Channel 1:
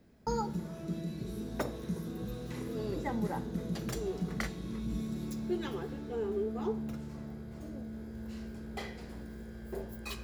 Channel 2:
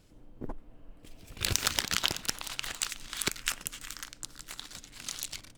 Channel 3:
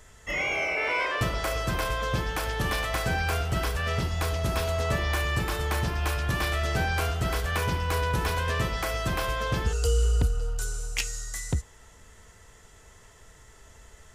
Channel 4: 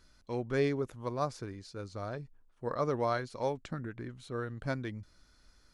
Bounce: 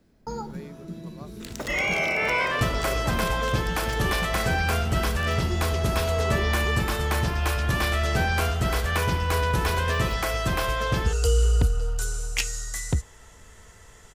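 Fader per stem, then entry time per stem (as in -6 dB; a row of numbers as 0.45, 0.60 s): -0.5, -13.0, +3.0, -14.0 dB; 0.00, 0.00, 1.40, 0.00 s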